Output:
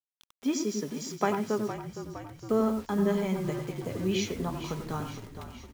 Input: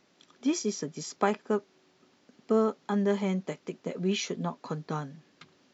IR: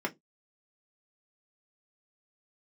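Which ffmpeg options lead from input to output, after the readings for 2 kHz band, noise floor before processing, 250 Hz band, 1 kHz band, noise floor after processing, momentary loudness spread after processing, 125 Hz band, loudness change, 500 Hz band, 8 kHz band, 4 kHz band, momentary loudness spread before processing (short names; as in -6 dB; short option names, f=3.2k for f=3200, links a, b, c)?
0.0 dB, -66 dBFS, +1.0 dB, 0.0 dB, under -85 dBFS, 13 LU, +2.0 dB, 0.0 dB, -0.5 dB, n/a, -0.5 dB, 11 LU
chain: -filter_complex "[0:a]asplit=2[a][b];[1:a]atrim=start_sample=2205,adelay=91[c];[b][c]afir=irnorm=-1:irlink=0,volume=-13.5dB[d];[a][d]amix=inputs=2:normalize=0,acrusher=bits=7:mix=0:aa=0.000001,asplit=2[e][f];[f]asplit=7[g][h][i][j][k][l][m];[g]adelay=462,afreqshift=-45,volume=-10.5dB[n];[h]adelay=924,afreqshift=-90,volume=-15.1dB[o];[i]adelay=1386,afreqshift=-135,volume=-19.7dB[p];[j]adelay=1848,afreqshift=-180,volume=-24.2dB[q];[k]adelay=2310,afreqshift=-225,volume=-28.8dB[r];[l]adelay=2772,afreqshift=-270,volume=-33.4dB[s];[m]adelay=3234,afreqshift=-315,volume=-38dB[t];[n][o][p][q][r][s][t]amix=inputs=7:normalize=0[u];[e][u]amix=inputs=2:normalize=0,volume=-1.5dB"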